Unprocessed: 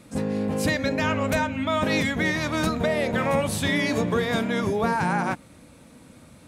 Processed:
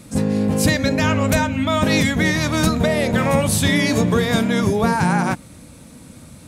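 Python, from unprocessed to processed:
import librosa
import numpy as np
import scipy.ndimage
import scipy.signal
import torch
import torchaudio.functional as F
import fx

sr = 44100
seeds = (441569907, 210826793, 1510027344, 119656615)

y = fx.bass_treble(x, sr, bass_db=6, treble_db=7)
y = F.gain(torch.from_numpy(y), 4.0).numpy()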